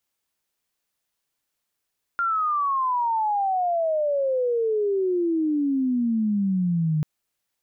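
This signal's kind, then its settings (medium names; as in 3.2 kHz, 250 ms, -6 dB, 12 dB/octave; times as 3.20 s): sweep logarithmic 1.4 kHz -> 150 Hz -20.5 dBFS -> -19.5 dBFS 4.84 s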